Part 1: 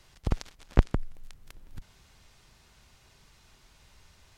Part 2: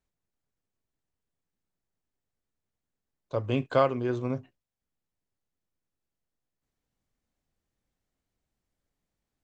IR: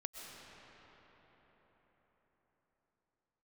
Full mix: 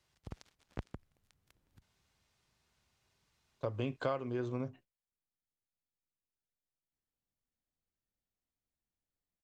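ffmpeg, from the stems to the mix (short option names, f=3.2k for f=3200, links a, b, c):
-filter_complex "[0:a]highpass=65,volume=-16.5dB[a];[1:a]agate=range=-10dB:threshold=-51dB:ratio=16:detection=peak,adelay=300,volume=-2dB[b];[a][b]amix=inputs=2:normalize=0,acompressor=threshold=-34dB:ratio=3"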